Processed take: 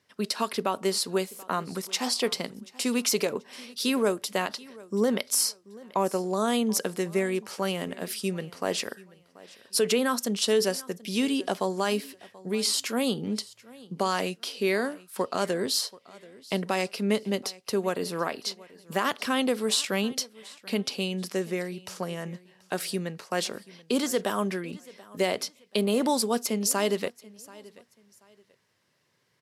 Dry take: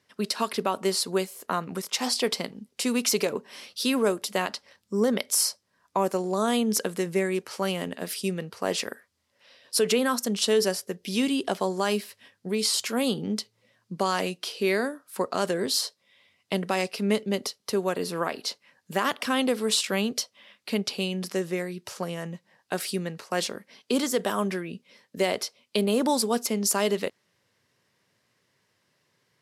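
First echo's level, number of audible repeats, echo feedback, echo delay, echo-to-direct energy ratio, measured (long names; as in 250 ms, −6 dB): −21.5 dB, 2, 27%, 733 ms, −21.0 dB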